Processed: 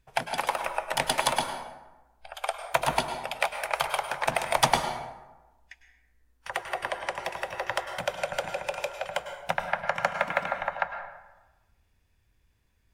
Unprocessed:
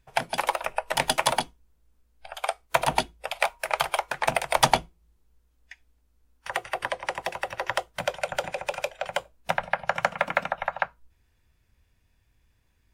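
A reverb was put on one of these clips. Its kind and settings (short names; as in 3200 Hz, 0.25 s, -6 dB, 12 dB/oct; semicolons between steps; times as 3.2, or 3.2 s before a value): plate-style reverb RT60 1.1 s, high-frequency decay 0.55×, pre-delay 90 ms, DRR 6.5 dB; gain -2.5 dB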